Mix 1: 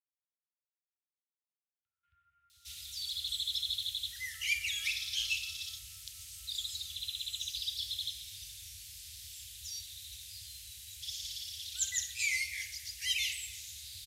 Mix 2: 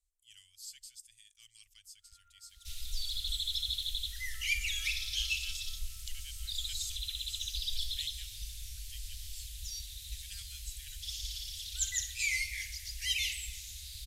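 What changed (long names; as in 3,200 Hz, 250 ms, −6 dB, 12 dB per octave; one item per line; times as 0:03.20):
speech: unmuted
first sound: remove high-frequency loss of the air 350 metres
master: remove high-pass filter 88 Hz 24 dB per octave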